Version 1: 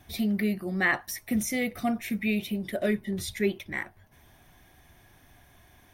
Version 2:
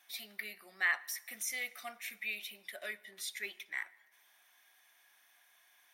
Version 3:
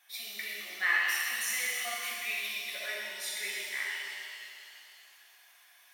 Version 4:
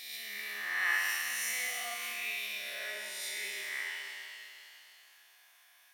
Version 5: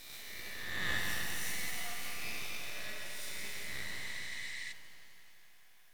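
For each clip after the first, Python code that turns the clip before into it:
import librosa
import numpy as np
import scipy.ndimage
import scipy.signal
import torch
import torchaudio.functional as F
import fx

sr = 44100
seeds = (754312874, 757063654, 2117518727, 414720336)

y1 = scipy.signal.sosfilt(scipy.signal.butter(2, 1300.0, 'highpass', fs=sr, output='sos'), x)
y1 = fx.rev_plate(y1, sr, seeds[0], rt60_s=1.2, hf_ratio=0.85, predelay_ms=0, drr_db=19.0)
y1 = y1 * 10.0 ** (-4.5 / 20.0)
y2 = fx.low_shelf(y1, sr, hz=250.0, db=-11.5)
y2 = fx.rev_shimmer(y2, sr, seeds[1], rt60_s=2.6, semitones=7, shimmer_db=-8, drr_db=-5.5)
y3 = fx.spec_swells(y2, sr, rise_s=1.37)
y3 = y3 * 10.0 ** (-5.5 / 20.0)
y4 = np.maximum(y3, 0.0)
y4 = fx.echo_heads(y4, sr, ms=86, heads='second and third', feedback_pct=64, wet_db=-9.0)
y4 = fx.spec_repair(y4, sr, seeds[2], start_s=3.9, length_s=0.8, low_hz=1700.0, high_hz=9900.0, source='before')
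y4 = y4 * 10.0 ** (-1.5 / 20.0)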